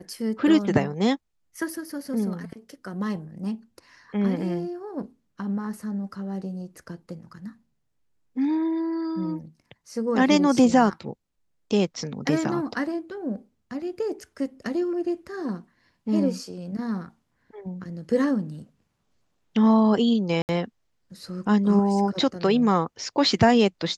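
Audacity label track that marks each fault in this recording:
20.420000	20.490000	dropout 69 ms

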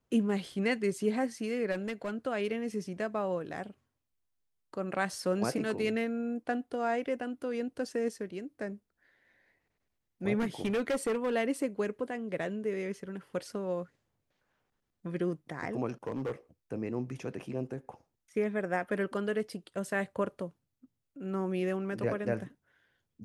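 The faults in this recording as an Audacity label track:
1.710000	2.110000	clipped -30.5 dBFS
10.380000	11.350000	clipped -26.5 dBFS
15.880000	16.320000	clipped -30 dBFS

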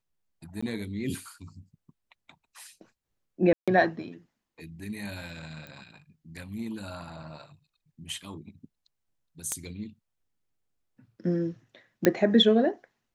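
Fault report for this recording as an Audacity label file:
0.610000	0.620000	dropout
3.530000	3.680000	dropout 146 ms
5.670000	5.670000	pop -28 dBFS
9.520000	9.520000	pop -14 dBFS
12.050000	12.050000	pop -7 dBFS

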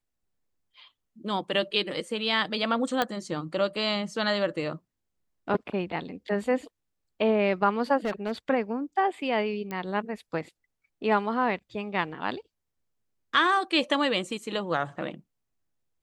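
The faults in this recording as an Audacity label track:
3.020000	3.020000	pop -11 dBFS
8.050000	8.320000	clipped -24 dBFS
9.710000	9.710000	pop -21 dBFS

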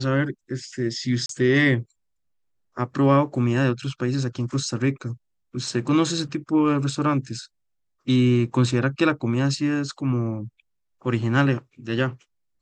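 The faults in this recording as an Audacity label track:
1.260000	1.290000	dropout 33 ms

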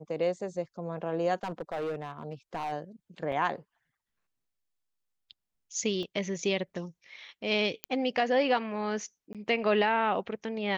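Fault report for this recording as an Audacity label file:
1.350000	2.730000	clipped -29.5 dBFS
3.320000	3.320000	dropout 4 ms
6.030000	6.030000	dropout 2.1 ms
7.840000	7.840000	pop -15 dBFS
9.330000	9.350000	dropout 17 ms

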